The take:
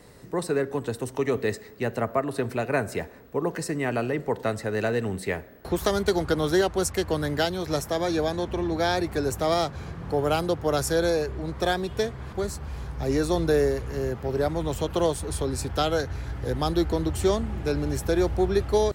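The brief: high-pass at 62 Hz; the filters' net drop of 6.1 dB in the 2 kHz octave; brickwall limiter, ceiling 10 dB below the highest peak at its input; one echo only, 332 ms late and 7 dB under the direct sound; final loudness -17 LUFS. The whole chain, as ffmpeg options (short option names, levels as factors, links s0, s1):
-af "highpass=62,equalizer=f=2000:t=o:g=-8.5,alimiter=limit=0.0794:level=0:latency=1,aecho=1:1:332:0.447,volume=5.01"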